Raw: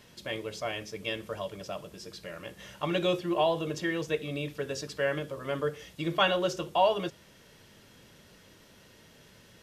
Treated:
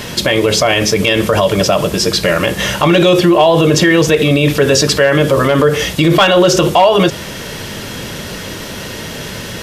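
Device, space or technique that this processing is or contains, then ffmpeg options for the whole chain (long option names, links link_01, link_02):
loud club master: -af "acompressor=threshold=-30dB:ratio=2,asoftclip=type=hard:threshold=-23dB,alimiter=level_in=32dB:limit=-1dB:release=50:level=0:latency=1,volume=-1dB"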